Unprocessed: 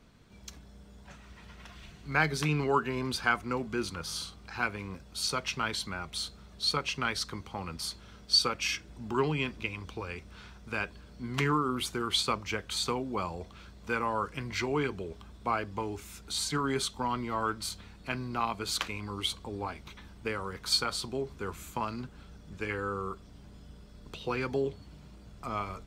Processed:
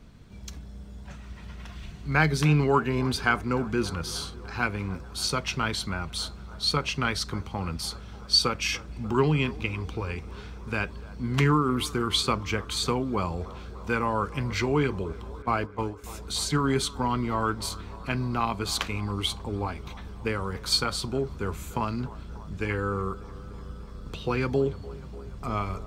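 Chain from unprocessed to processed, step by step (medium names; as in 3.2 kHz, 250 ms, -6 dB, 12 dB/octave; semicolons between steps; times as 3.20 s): 15.42–16.04 s: gate -34 dBFS, range -15 dB; bass shelf 220 Hz +9 dB; on a send: feedback echo behind a band-pass 295 ms, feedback 77%, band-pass 700 Hz, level -17.5 dB; on the sum: trim +3 dB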